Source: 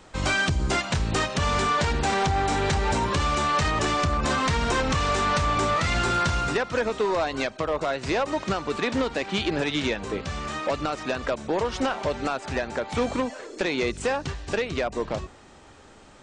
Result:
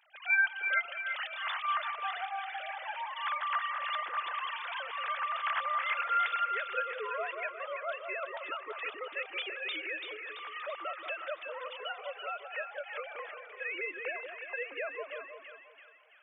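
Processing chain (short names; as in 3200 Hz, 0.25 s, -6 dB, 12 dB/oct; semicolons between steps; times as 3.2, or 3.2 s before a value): sine-wave speech; differentiator; split-band echo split 1200 Hz, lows 0.179 s, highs 0.335 s, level -6 dB; gain +4 dB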